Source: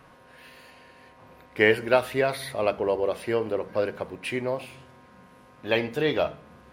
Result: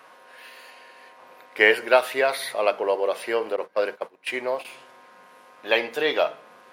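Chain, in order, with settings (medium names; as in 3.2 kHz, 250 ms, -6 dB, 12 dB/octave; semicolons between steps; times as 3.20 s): 3.56–4.65 s: gate -32 dBFS, range -18 dB; high-pass 520 Hz 12 dB/octave; trim +5 dB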